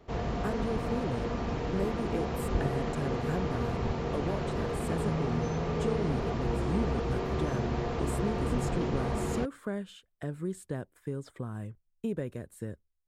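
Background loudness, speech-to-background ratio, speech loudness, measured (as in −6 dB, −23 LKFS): −33.0 LKFS, −4.5 dB, −37.5 LKFS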